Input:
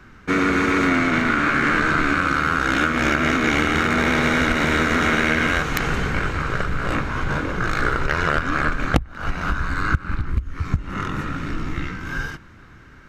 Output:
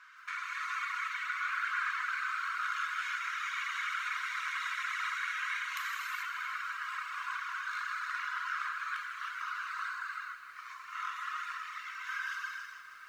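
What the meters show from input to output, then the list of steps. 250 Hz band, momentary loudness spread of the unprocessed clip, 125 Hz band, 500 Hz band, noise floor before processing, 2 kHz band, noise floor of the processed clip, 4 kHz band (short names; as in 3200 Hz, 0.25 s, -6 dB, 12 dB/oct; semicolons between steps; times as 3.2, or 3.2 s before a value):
under -40 dB, 10 LU, under -40 dB, under -40 dB, -45 dBFS, -13.0 dB, -50 dBFS, -14.0 dB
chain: compressor 20:1, threshold -27 dBFS, peak gain reduction 17 dB; brick-wall FIR high-pass 970 Hz; high shelf 5600 Hz -2.5 dB; non-linear reverb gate 0.47 s flat, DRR -6.5 dB; reverb removal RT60 1.3 s; lo-fi delay 0.159 s, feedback 80%, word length 9-bit, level -12.5 dB; gain -6.5 dB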